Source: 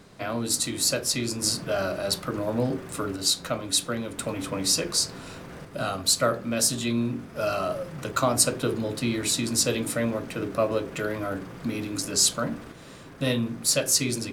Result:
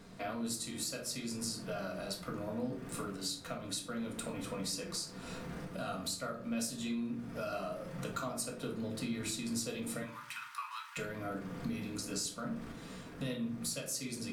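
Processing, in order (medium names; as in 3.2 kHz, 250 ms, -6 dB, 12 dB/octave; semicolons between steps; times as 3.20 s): 10.02–10.97 s: steep high-pass 890 Hz 96 dB/octave; compression 4:1, threshold -34 dBFS, peak gain reduction 15.5 dB; simulated room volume 430 m³, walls furnished, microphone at 1.7 m; trim -6 dB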